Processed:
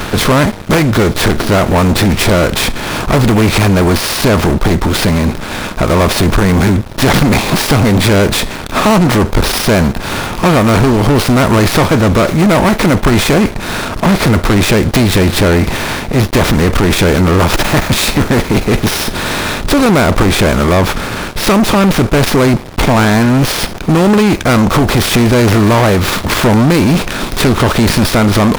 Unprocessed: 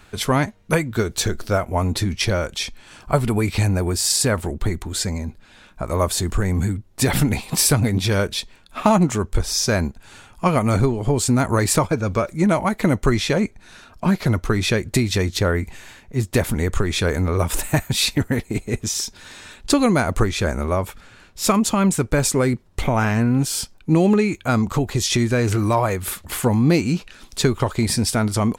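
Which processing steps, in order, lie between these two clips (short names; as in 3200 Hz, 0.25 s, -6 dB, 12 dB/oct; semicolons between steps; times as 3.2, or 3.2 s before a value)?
per-bin compression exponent 0.6; sample leveller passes 5; running maximum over 5 samples; gain -5.5 dB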